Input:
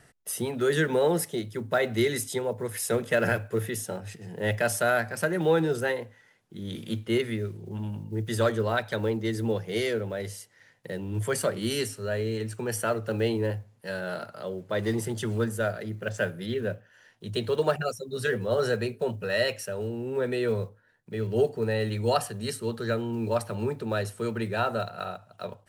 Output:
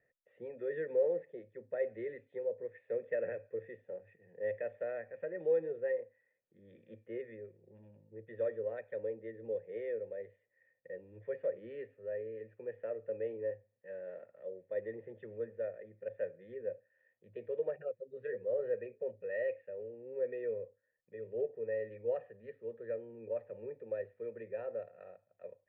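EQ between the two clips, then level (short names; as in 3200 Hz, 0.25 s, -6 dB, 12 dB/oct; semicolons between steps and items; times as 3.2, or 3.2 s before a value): dynamic EQ 450 Hz, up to +6 dB, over -40 dBFS, Q 1.8; vocal tract filter e; -7.0 dB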